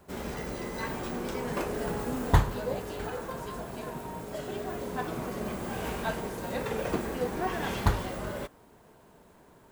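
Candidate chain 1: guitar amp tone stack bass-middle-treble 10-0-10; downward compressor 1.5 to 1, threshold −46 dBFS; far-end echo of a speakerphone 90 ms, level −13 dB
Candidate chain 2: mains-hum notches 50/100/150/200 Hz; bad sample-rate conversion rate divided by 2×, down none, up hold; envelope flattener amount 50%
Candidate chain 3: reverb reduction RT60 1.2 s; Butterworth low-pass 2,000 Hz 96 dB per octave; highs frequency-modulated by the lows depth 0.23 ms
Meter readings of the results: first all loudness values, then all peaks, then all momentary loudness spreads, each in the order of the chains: −45.0, −26.0, −35.5 LKFS; −23.0, −7.0, −7.5 dBFS; 6, 8, 11 LU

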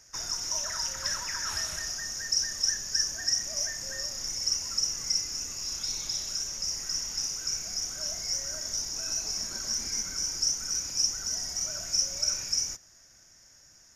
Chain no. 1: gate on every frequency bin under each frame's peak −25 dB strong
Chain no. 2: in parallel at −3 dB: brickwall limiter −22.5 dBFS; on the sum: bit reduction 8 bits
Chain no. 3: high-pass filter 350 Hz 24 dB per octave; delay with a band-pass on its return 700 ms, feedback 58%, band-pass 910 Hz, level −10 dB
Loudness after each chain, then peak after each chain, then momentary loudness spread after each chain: −29.0, −25.0, −29.0 LKFS; −12.5, −10.5, −13.0 dBFS; 5, 4, 5 LU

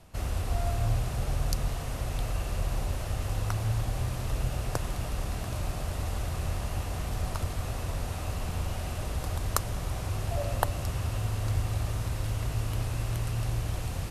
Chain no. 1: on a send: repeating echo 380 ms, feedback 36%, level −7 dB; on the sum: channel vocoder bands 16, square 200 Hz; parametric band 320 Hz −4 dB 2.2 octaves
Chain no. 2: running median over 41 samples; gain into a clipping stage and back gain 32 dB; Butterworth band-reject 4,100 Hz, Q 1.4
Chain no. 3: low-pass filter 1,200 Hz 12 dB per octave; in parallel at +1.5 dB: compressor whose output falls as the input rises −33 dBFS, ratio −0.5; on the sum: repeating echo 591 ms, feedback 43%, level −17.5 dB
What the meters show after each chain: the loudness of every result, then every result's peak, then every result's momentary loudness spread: −37.5, −37.5, −28.5 LKFS; −16.0, −30.0, −9.0 dBFS; 4, 2, 1 LU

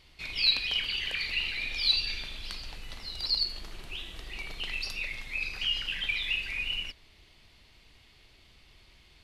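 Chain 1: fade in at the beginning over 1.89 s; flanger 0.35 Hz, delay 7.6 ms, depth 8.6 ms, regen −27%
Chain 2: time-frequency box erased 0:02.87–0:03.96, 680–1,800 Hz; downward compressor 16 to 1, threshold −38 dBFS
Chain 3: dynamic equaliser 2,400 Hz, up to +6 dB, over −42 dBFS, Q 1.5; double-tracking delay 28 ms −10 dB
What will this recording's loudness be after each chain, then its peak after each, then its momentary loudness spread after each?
−35.5, −41.0, −25.5 LKFS; −17.0, −24.0, −8.5 dBFS; 13, 19, 17 LU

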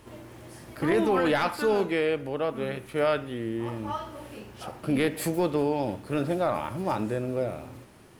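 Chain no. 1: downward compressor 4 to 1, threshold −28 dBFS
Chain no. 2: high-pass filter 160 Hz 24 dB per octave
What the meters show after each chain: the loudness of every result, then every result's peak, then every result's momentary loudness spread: −33.0, −28.0 LKFS; −18.0, −13.0 dBFS; 12, 18 LU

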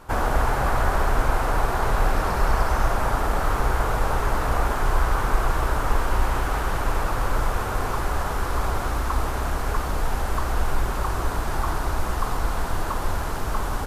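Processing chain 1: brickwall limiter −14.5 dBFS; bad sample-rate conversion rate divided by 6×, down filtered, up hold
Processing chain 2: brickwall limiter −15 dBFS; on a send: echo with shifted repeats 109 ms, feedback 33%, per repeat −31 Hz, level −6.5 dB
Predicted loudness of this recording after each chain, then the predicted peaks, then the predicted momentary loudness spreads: −27.0, −26.5 LKFS; −14.5, −11.0 dBFS; 3, 2 LU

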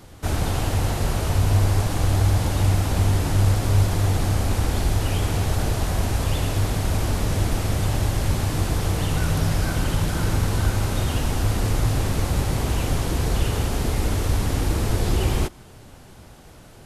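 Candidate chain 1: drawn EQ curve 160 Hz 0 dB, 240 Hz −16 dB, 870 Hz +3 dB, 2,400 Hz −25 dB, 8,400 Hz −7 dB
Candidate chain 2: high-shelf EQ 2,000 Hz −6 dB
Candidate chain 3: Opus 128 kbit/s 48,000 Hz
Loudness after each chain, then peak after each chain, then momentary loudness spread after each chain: −24.0, −23.5, −23.0 LKFS; −8.5, −7.0, −6.5 dBFS; 5, 4, 4 LU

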